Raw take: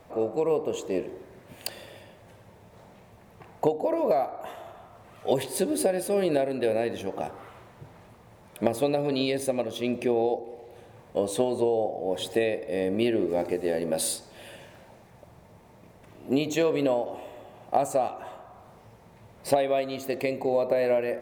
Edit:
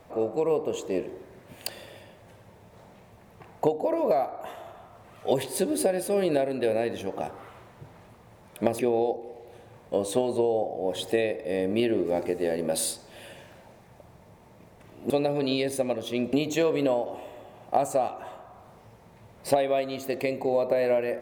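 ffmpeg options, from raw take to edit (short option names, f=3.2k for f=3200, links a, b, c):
-filter_complex "[0:a]asplit=4[a][b][c][d];[a]atrim=end=8.792[e];[b]atrim=start=10.018:end=16.332[f];[c]atrim=start=8.788:end=10.022[g];[d]atrim=start=16.328[h];[e][f]acrossfade=d=0.004:c1=hsin:c2=hsin[i];[i][g]acrossfade=d=0.004:c1=hsin:c2=hsin[j];[j][h]acrossfade=d=0.004:c1=hsin:c2=hsin"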